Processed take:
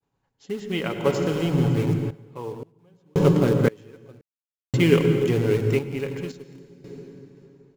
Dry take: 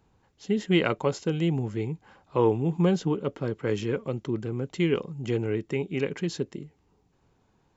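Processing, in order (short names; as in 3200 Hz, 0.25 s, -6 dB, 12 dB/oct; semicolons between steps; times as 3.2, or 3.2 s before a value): expander -60 dBFS; low shelf 87 Hz -10.5 dB; in parallel at -10 dB: bit-crush 5-bit; on the sum: comb 7.2 ms, depth 35%; on a send at -6 dB: low shelf 250 Hz +11.5 dB + reverb RT60 2.6 s, pre-delay 82 ms; on the sum: random-step tremolo 1.9 Hz, depth 100%; gain +5.5 dB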